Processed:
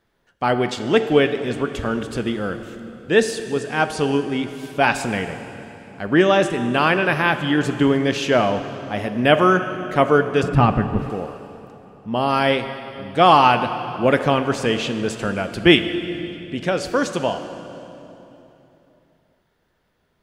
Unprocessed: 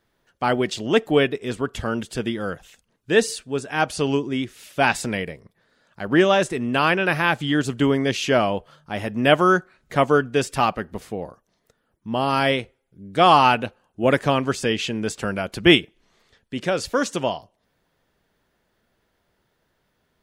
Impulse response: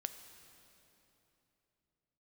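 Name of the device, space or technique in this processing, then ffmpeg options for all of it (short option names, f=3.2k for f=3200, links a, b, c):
swimming-pool hall: -filter_complex "[1:a]atrim=start_sample=2205[a];[0:a][a]afir=irnorm=-1:irlink=0,highshelf=f=4.5k:g=-5,asettb=1/sr,asplit=3[b][c][d];[b]atrim=end=10.434[e];[c]atrim=start=10.43:end=11.1,asetpts=PTS-STARTPTS,afade=t=in:d=0.004:c=qsin,afade=t=out:st=0.666:d=0.004:c=qsin,bass=f=250:g=14,treble=f=4k:g=-14[f];[d]atrim=start=11.096[g];[e][f]acrossfade=d=0.004:c1=hsin:c2=qsin[h];[h][g]acrossfade=d=0.004:c1=qsin:c2=hsin,volume=4dB"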